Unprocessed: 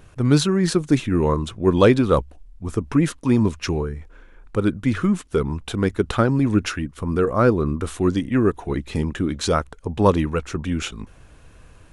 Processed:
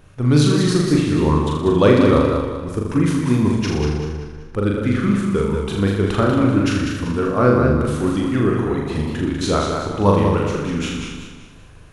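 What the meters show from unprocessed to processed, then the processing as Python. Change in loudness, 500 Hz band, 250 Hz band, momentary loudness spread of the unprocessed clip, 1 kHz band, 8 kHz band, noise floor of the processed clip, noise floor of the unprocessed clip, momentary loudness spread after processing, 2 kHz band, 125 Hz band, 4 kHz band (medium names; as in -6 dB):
+3.0 dB, +2.5 dB, +3.0 dB, 10 LU, +3.0 dB, +1.5 dB, -41 dBFS, -48 dBFS, 9 LU, +3.0 dB, +4.0 dB, +3.0 dB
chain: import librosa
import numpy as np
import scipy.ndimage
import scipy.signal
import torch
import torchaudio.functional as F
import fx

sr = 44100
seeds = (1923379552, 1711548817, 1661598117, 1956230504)

p1 = fx.peak_eq(x, sr, hz=7800.0, db=-4.0, octaves=0.34)
p2 = p1 + fx.room_flutter(p1, sr, wall_m=6.9, rt60_s=0.84, dry=0)
p3 = fx.echo_warbled(p2, sr, ms=192, feedback_pct=40, rate_hz=2.8, cents=74, wet_db=-5.5)
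y = F.gain(torch.from_numpy(p3), -1.5).numpy()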